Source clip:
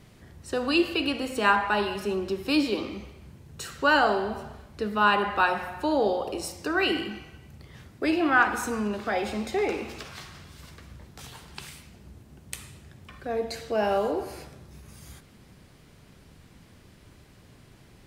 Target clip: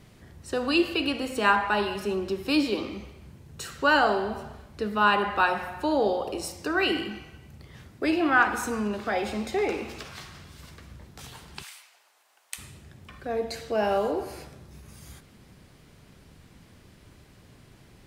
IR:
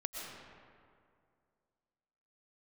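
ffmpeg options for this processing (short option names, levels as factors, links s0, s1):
-filter_complex "[0:a]asplit=3[s0][s1][s2];[s0]afade=t=out:st=11.62:d=0.02[s3];[s1]highpass=f=740:w=0.5412,highpass=f=740:w=1.3066,afade=t=in:st=11.62:d=0.02,afade=t=out:st=12.57:d=0.02[s4];[s2]afade=t=in:st=12.57:d=0.02[s5];[s3][s4][s5]amix=inputs=3:normalize=0"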